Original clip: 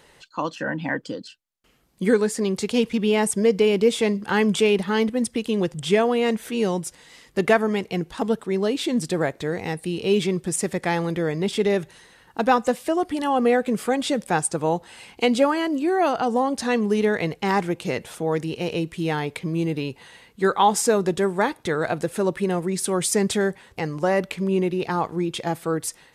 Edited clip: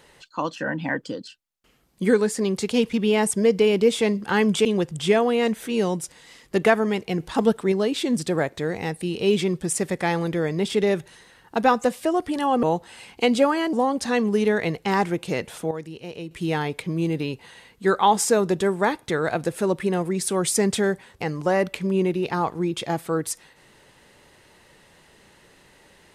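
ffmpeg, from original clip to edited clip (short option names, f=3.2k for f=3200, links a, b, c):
-filter_complex "[0:a]asplit=8[a][b][c][d][e][f][g][h];[a]atrim=end=4.652[i];[b]atrim=start=5.478:end=8.032[j];[c]atrim=start=8.028:end=8.552,asetpts=PTS-STARTPTS,volume=3.5dB[k];[d]atrim=start=8.548:end=13.462[l];[e]atrim=start=14.628:end=15.732[m];[f]atrim=start=16.298:end=18.282[n];[g]atrim=start=18.278:end=18.882,asetpts=PTS-STARTPTS,volume=-9.5dB[o];[h]atrim=start=18.878[p];[i][j]acrossfade=d=0.004:c1=hsin:c2=hsin[q];[q][k]acrossfade=d=0.004:c1=hsin:c2=hsin[r];[r][l]acrossfade=d=0.004:c1=hsin:c2=hsin[s];[s][m]acrossfade=d=0.004:c1=hsin:c2=hsin[t];[t][n]acrossfade=d=0.004:c1=hsin:c2=hsin[u];[u][o]acrossfade=d=0.004:c1=hsin:c2=hsin[v];[v][p]acrossfade=d=0.004:c1=hsin:c2=hsin"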